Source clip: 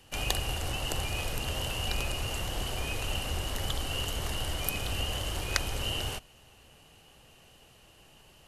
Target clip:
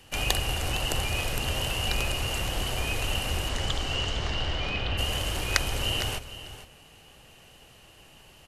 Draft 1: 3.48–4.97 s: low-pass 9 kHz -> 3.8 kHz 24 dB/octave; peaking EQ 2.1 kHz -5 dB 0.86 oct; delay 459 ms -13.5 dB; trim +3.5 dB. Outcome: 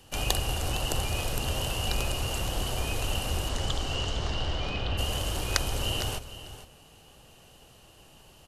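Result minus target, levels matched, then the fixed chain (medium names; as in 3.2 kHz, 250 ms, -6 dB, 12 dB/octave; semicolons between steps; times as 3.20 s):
2 kHz band -3.0 dB
3.48–4.97 s: low-pass 9 kHz -> 3.8 kHz 24 dB/octave; peaking EQ 2.1 kHz +2.5 dB 0.86 oct; delay 459 ms -13.5 dB; trim +3.5 dB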